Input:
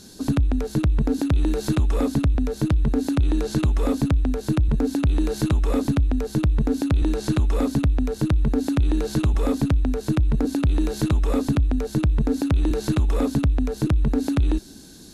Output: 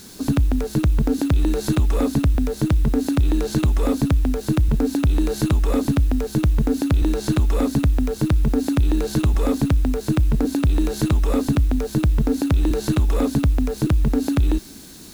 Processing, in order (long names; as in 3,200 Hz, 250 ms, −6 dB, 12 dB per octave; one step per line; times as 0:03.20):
high-shelf EQ 9,600 Hz +4 dB
in parallel at −12 dB: bit-depth reduction 6 bits, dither triangular